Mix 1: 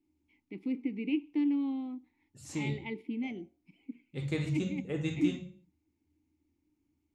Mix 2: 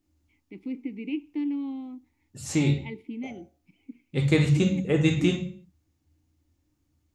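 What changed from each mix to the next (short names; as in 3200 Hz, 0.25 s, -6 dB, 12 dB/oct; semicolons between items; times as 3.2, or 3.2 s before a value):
second voice +12.0 dB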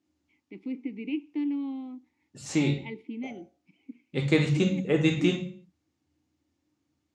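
master: add BPF 170–6600 Hz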